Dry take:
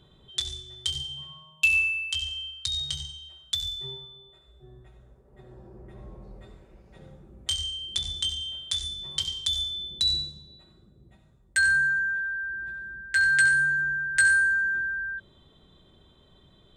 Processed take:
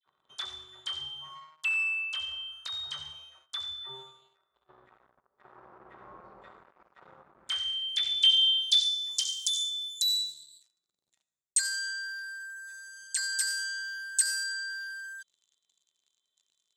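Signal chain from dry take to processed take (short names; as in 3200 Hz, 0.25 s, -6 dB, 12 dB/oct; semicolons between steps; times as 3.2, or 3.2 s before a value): dispersion lows, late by 63 ms, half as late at 1500 Hz; sample leveller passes 3; band-pass sweep 1200 Hz -> 7000 Hz, 7.28–9.36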